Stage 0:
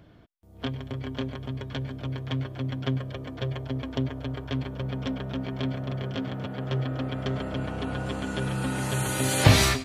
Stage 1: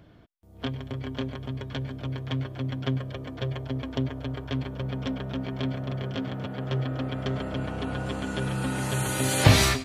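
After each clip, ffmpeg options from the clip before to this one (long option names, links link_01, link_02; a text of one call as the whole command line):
ffmpeg -i in.wav -af anull out.wav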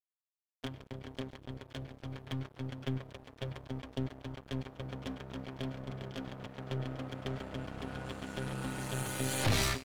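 ffmpeg -i in.wav -af "aeval=exprs='sgn(val(0))*max(abs(val(0))-0.015,0)':channel_layout=same,aeval=exprs='(tanh(11.2*val(0)+0.55)-tanh(0.55))/11.2':channel_layout=same,volume=-4dB" out.wav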